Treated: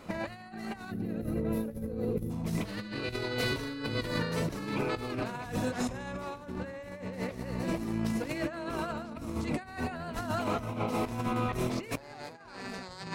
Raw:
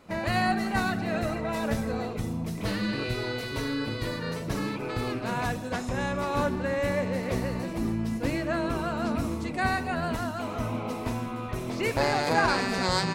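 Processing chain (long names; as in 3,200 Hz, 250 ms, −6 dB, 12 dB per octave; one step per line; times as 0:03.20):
0:00.91–0:02.30: gain on a spectral selection 580–9,900 Hz −16 dB
0:07.80–0:08.92: low-shelf EQ 200 Hz −8 dB
compressor whose output falls as the input rises −34 dBFS, ratio −0.5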